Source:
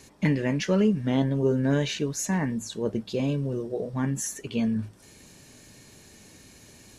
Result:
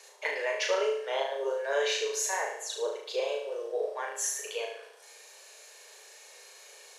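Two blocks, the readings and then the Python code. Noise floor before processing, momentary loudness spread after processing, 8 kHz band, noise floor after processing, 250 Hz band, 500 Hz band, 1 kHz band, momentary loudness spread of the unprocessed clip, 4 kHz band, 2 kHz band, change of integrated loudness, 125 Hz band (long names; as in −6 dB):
−53 dBFS, 21 LU, +1.5 dB, −53 dBFS, −28.0 dB, −1.0 dB, +2.5 dB, 8 LU, +2.0 dB, +2.5 dB, −4.5 dB, below −40 dB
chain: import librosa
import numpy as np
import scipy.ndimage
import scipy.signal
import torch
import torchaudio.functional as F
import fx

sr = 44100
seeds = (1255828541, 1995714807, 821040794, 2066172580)

p1 = scipy.signal.sosfilt(scipy.signal.butter(12, 430.0, 'highpass', fs=sr, output='sos'), x)
p2 = fx.high_shelf(p1, sr, hz=11000.0, db=-6.0)
y = p2 + fx.room_flutter(p2, sr, wall_m=6.3, rt60_s=0.64, dry=0)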